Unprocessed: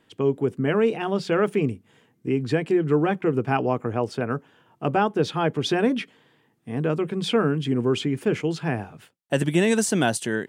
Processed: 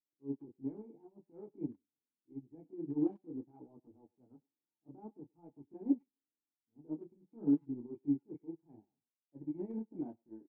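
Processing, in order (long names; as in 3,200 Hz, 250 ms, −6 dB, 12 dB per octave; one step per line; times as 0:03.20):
transient designer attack −10 dB, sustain +2 dB
formant resonators in series u
multi-voice chorus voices 2, 0.52 Hz, delay 25 ms, depth 4.3 ms
far-end echo of a speakerphone 100 ms, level −13 dB
expander for the loud parts 2.5 to 1, over −48 dBFS
level +1.5 dB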